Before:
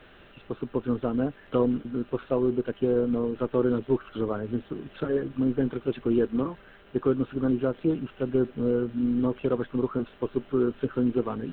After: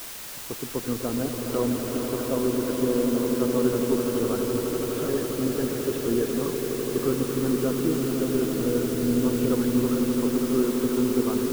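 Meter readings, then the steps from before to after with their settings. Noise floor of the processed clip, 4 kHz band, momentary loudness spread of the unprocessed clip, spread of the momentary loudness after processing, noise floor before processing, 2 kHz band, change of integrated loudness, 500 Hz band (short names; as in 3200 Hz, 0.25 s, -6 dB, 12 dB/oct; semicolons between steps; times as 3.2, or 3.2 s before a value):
-37 dBFS, n/a, 6 LU, 5 LU, -53 dBFS, +5.5 dB, +2.5 dB, +2.0 dB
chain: swelling echo 83 ms, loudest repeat 8, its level -9.5 dB; requantised 6-bit, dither triangular; gain -2 dB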